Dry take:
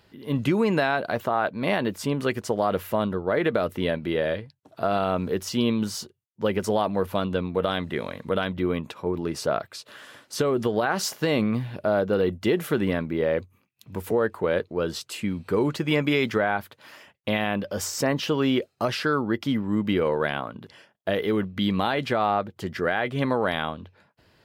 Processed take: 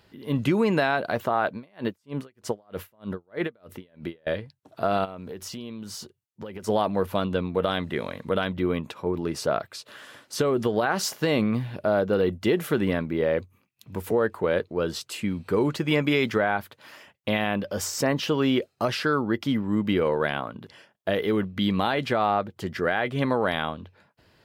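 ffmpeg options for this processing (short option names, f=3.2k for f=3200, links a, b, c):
-filter_complex "[0:a]asettb=1/sr,asplit=3[a][b][c];[a]atrim=end=1.554[d];[b]atrim=start=1.55:end=4.27,asetpts=PTS-STARTPTS,afade=t=in:d=0.004:c=qsin,afade=t=out:st=2.716:d=0.004:c=qsin,aeval=exprs='val(0)*pow(10,-39*(0.5-0.5*cos(2*PI*3.2*n/s))/20)':c=same[e];[c]atrim=start=4.266[f];[d][e]acrossfade=d=0.004:c1=hsin:c2=qsin[g];[g][f]acrossfade=d=0.004:c1=qsin:c2=hsin,asplit=3[h][i][j];[h]afade=t=out:st=5.04:d=0.02[k];[i]acompressor=threshold=-33dB:ratio=10:attack=3.2:release=140:knee=1:detection=peak,afade=t=in:st=5.04:d=0.02,afade=t=out:st=6.67:d=0.02[l];[j]afade=t=in:st=6.67:d=0.02[m];[k][l][m]amix=inputs=3:normalize=0"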